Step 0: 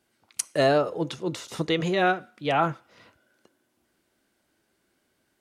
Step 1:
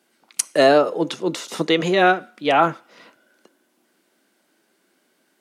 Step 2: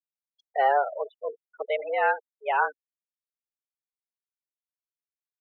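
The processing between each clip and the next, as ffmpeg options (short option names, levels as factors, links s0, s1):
-af "highpass=f=190:w=0.5412,highpass=f=190:w=1.3066,volume=2.24"
-af "afftfilt=real='re*gte(hypot(re,im),0.141)':imag='im*gte(hypot(re,im),0.141)':win_size=1024:overlap=0.75,highpass=f=330:t=q:w=0.5412,highpass=f=330:t=q:w=1.307,lowpass=f=2500:t=q:w=0.5176,lowpass=f=2500:t=q:w=0.7071,lowpass=f=2500:t=q:w=1.932,afreqshift=130,volume=0.422"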